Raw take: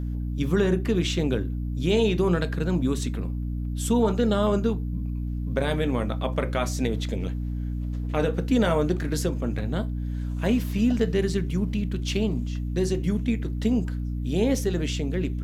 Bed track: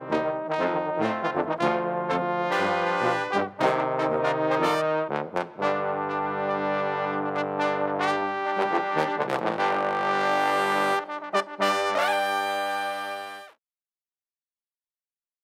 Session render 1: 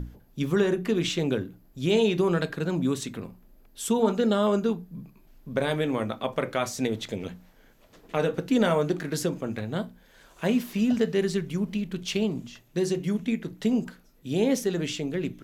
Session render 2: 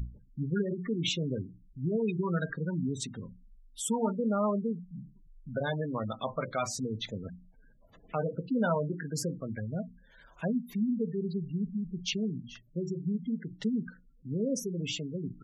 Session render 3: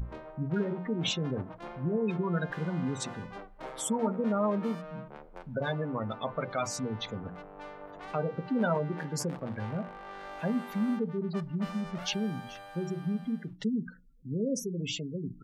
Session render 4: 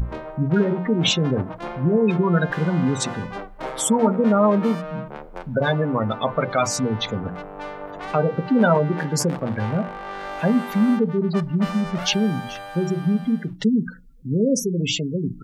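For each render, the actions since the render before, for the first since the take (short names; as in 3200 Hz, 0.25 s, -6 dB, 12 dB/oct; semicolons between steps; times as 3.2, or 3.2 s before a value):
notches 60/120/180/240/300 Hz
spectral gate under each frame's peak -15 dB strong; bell 360 Hz -11 dB 1.3 oct
add bed track -20 dB
gain +11.5 dB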